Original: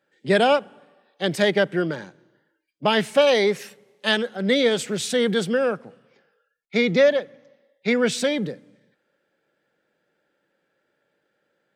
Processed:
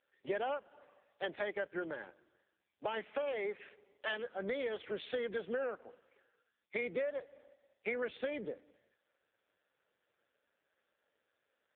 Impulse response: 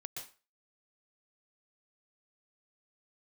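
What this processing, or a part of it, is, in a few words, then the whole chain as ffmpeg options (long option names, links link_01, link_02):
voicemail: -af "highpass=430,lowpass=3000,acompressor=threshold=-29dB:ratio=10,volume=-4dB" -ar 8000 -c:a libopencore_amrnb -b:a 5150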